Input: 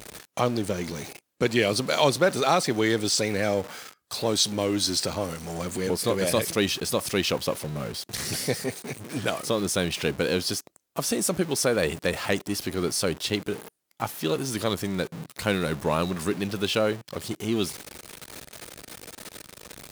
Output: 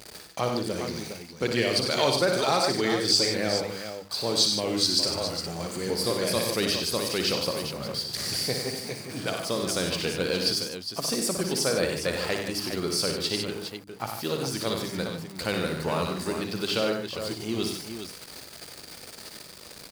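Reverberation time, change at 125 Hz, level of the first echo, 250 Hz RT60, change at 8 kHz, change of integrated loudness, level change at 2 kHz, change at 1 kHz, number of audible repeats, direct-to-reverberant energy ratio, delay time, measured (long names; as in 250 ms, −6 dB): no reverb audible, −3.0 dB, −6.5 dB, no reverb audible, −1.5 dB, −0.5 dB, −2.0 dB, −2.0 dB, 4, no reverb audible, 59 ms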